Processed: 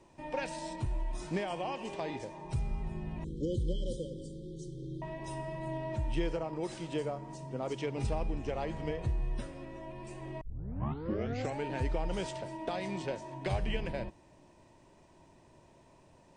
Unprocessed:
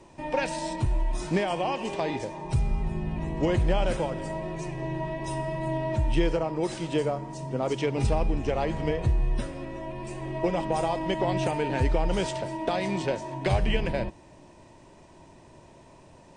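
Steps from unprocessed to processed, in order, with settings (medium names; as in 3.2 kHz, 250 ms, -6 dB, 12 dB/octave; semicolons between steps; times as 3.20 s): 3.24–5.02 s: brick-wall FIR band-stop 570–3000 Hz; 6.53–7.36 s: upward compressor, threshold -29 dBFS; 10.41 s: tape start 1.24 s; trim -8.5 dB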